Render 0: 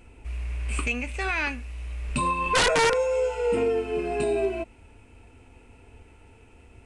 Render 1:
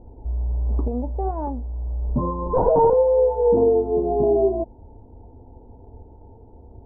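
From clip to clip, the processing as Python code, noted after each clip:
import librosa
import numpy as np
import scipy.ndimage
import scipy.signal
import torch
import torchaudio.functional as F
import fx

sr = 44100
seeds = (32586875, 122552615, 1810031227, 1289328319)

y = scipy.signal.sosfilt(scipy.signal.cheby1(5, 1.0, 910.0, 'lowpass', fs=sr, output='sos'), x)
y = F.gain(torch.from_numpy(y), 7.5).numpy()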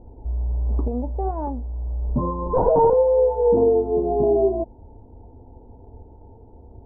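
y = x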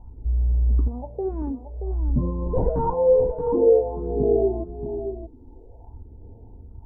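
y = fx.phaser_stages(x, sr, stages=4, low_hz=120.0, high_hz=1300.0, hz=0.51, feedback_pct=50)
y = y + 10.0 ** (-8.5 / 20.0) * np.pad(y, (int(627 * sr / 1000.0), 0))[:len(y)]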